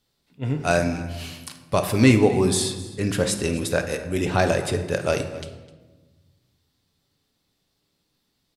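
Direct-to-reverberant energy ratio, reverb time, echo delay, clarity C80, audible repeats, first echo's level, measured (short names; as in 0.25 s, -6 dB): 6.0 dB, 1.3 s, 0.256 s, 11.0 dB, 1, -18.5 dB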